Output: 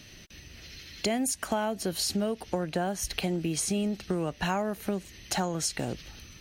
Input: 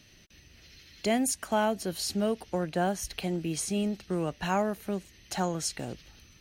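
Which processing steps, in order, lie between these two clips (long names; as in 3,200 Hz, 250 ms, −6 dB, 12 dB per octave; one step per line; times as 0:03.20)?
downward compressor 5 to 1, threshold −34 dBFS, peak gain reduction 11.5 dB
level +7.5 dB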